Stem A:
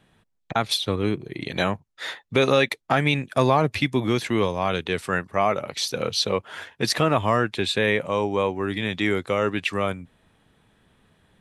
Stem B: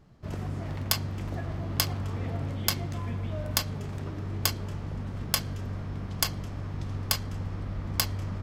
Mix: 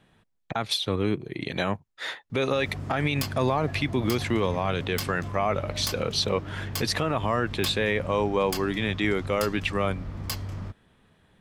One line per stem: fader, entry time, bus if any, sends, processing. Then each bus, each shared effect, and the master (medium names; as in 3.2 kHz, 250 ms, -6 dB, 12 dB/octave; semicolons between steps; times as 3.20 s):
-0.5 dB, 0.00 s, no send, treble shelf 6.3 kHz -4.5 dB
-1.5 dB, 2.30 s, no send, hard clipper -22.5 dBFS, distortion -11 dB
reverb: none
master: peak limiter -14.5 dBFS, peak gain reduction 10 dB